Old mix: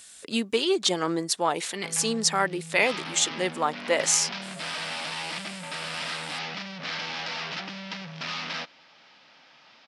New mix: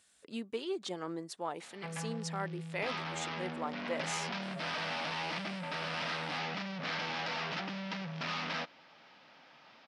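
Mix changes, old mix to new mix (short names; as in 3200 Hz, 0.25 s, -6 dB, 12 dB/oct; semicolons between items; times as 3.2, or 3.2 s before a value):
speech -12.0 dB; master: add high shelf 2400 Hz -9.5 dB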